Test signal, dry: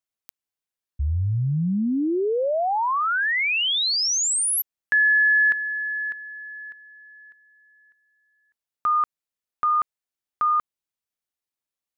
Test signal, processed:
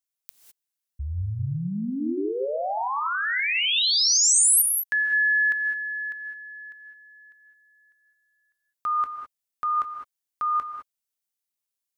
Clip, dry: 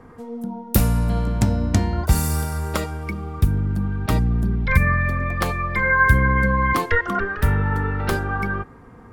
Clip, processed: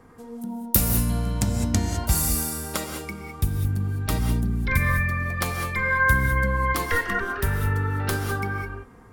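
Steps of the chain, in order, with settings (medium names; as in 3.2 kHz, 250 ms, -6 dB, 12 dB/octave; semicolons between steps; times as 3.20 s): treble shelf 3.8 kHz +11.5 dB; gated-style reverb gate 230 ms rising, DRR 4 dB; trim -6.5 dB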